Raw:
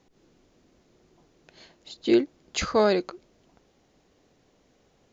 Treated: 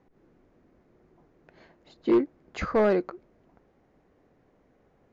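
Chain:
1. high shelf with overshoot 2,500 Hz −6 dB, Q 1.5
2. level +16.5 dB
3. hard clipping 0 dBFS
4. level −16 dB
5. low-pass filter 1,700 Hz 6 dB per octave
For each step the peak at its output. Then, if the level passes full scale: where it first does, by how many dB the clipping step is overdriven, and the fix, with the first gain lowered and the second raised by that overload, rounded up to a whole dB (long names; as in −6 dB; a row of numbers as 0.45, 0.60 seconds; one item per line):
−9.5, +7.0, 0.0, −16.0, −16.0 dBFS
step 2, 7.0 dB
step 2 +9.5 dB, step 4 −9 dB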